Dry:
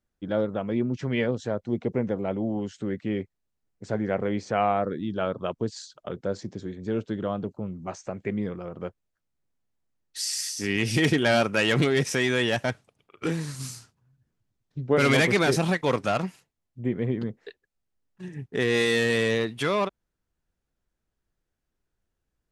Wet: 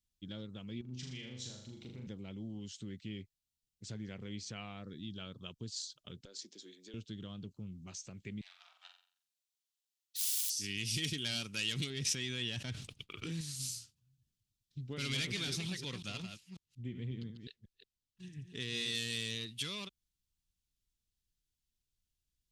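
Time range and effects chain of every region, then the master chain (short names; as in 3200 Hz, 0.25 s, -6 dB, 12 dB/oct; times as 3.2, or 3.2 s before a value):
0.81–2.07 bell 820 Hz +6.5 dB 0.21 oct + compressor 3:1, threshold -34 dBFS + flutter echo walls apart 6.8 m, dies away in 0.68 s
6.25–6.94 HPF 310 Hz 24 dB/oct + compressor 5:1, threshold -32 dBFS
8.41–10.5 self-modulated delay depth 0.19 ms + steep high-pass 670 Hz 96 dB/oct + flutter echo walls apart 7.6 m, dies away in 0.5 s
11.9–13.41 expander -58 dBFS + LPF 2200 Hz 6 dB/oct + fast leveller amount 70%
14.94–18.95 reverse delay 0.181 s, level -8.5 dB + high shelf 7500 Hz -10 dB
whole clip: resonant high shelf 2400 Hz +9 dB, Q 1.5; compressor 1.5:1, threshold -31 dBFS; passive tone stack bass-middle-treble 6-0-2; gain +6 dB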